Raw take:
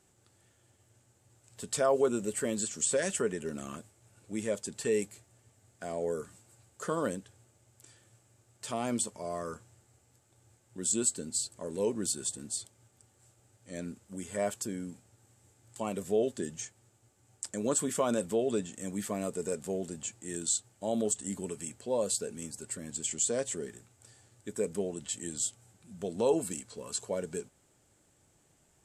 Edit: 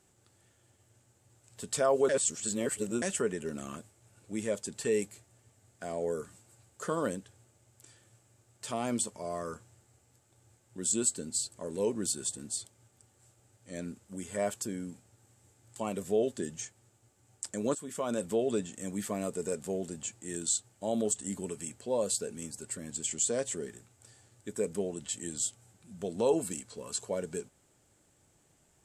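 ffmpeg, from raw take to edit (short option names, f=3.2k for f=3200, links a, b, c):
-filter_complex "[0:a]asplit=4[a][b][c][d];[a]atrim=end=2.092[e];[b]atrim=start=2.088:end=3.022,asetpts=PTS-STARTPTS,areverse[f];[c]atrim=start=3.018:end=17.75,asetpts=PTS-STARTPTS,afade=t=out:st=14.728:d=0.004:c=hsin:silence=0.177828[g];[d]atrim=start=17.75,asetpts=PTS-STARTPTS,afade=t=in:d=0.58:silence=0.177828[h];[e][f]acrossfade=d=0.004:c1=hsin:c2=hsin[i];[g][h]concat=n=2:v=0:a=1[j];[i][j]acrossfade=d=0.004:c1=hsin:c2=hsin"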